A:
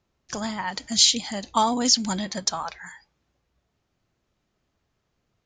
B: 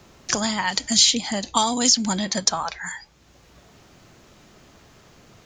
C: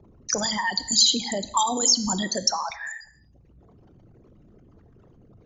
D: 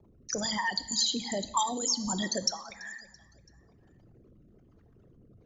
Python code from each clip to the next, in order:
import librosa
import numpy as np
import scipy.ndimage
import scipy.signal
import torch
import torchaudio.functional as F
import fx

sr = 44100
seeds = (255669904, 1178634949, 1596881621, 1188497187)

y1 = fx.peak_eq(x, sr, hz=7500.0, db=3.0, octaves=0.77)
y1 = fx.band_squash(y1, sr, depth_pct=70)
y1 = y1 * 10.0 ** (3.5 / 20.0)
y2 = fx.envelope_sharpen(y1, sr, power=3.0)
y2 = fx.rev_gated(y2, sr, seeds[0], gate_ms=290, shape='falling', drr_db=11.5)
y2 = y2 * 10.0 ** (-2.0 / 20.0)
y3 = fx.rotary(y2, sr, hz=1.2)
y3 = fx.echo_feedback(y3, sr, ms=334, feedback_pct=53, wet_db=-23.5)
y3 = y3 * 10.0 ** (-4.0 / 20.0)